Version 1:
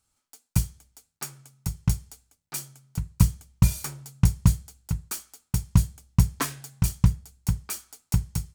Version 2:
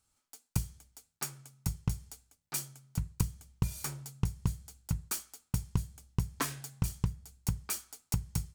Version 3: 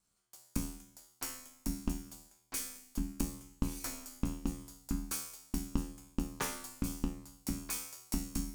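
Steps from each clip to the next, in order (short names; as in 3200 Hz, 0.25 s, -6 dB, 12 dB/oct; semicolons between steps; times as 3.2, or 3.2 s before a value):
compressor 12:1, threshold -24 dBFS, peak gain reduction 13.5 dB; gain -2 dB
resonator 79 Hz, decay 0.7 s, harmonics all, mix 90%; ring modulator 120 Hz; gain +12.5 dB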